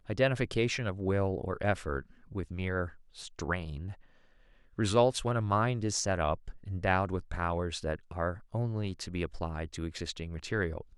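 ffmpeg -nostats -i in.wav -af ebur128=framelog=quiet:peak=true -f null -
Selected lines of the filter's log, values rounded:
Integrated loudness:
  I:         -32.8 LUFS
  Threshold: -43.1 LUFS
Loudness range:
  LRA:         5.5 LU
  Threshold: -53.1 LUFS
  LRA low:   -36.2 LUFS
  LRA high:  -30.6 LUFS
True peak:
  Peak:      -12.4 dBFS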